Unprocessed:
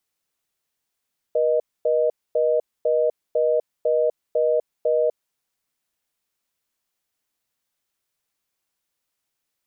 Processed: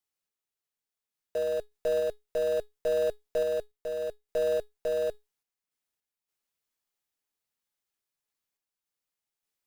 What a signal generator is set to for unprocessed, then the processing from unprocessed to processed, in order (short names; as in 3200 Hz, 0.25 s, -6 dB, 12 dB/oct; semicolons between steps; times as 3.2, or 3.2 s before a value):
call progress tone reorder tone, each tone -19.5 dBFS 3.97 s
in parallel at -5 dB: Schmitt trigger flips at -37.5 dBFS; on the sum: resonator 420 Hz, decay 0.2 s, harmonics all, mix 60%; random-step tremolo